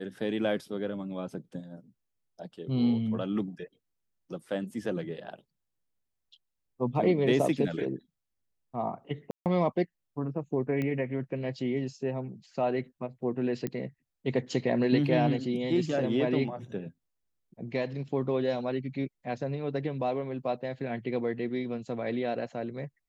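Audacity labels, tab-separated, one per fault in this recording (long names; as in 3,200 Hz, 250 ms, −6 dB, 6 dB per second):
9.310000	9.460000	drop-out 148 ms
10.820000	10.820000	click −21 dBFS
13.670000	13.670000	click −19 dBFS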